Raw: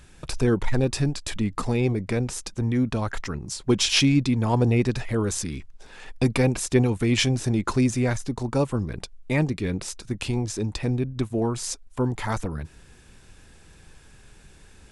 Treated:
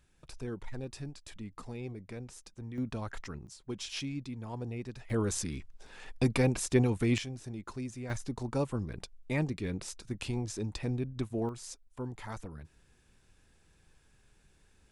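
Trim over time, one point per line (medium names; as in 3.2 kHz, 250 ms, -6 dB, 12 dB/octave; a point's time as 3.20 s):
-18 dB
from 2.78 s -11.5 dB
from 3.47 s -18.5 dB
from 5.10 s -6 dB
from 7.18 s -18 dB
from 8.10 s -8.5 dB
from 11.49 s -14.5 dB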